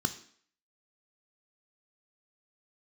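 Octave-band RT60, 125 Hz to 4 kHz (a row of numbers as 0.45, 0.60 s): 0.40, 0.55, 0.55, 0.55, 0.60, 0.55 s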